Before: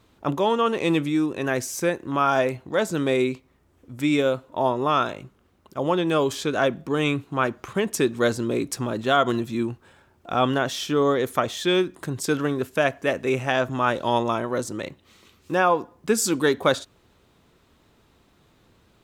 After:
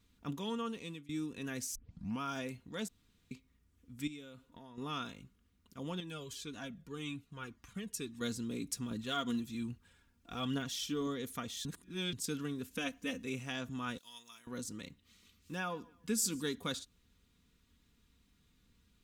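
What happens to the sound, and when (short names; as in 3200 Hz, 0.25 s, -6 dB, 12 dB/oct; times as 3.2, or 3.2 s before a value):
0.59–1.09 fade out, to -23.5 dB
1.75 tape start 0.46 s
2.88–3.31 room tone
4.07–4.78 compressor, threshold -31 dBFS
6–8.21 cascading flanger falling 1.9 Hz
8.91–11.07 phaser 1.2 Hz, delay 4.4 ms, feedback 39%
11.65–12.13 reverse
12.7–13.23 comb 3.9 ms, depth 81%
13.98–14.47 pre-emphasis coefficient 0.97
15.55–16.55 warbling echo 0.145 s, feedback 31%, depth 71 cents, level -24 dB
whole clip: passive tone stack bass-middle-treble 6-0-2; comb 4.2 ms, depth 49%; dynamic EQ 1800 Hz, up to -4 dB, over -60 dBFS, Q 1.3; gain +5.5 dB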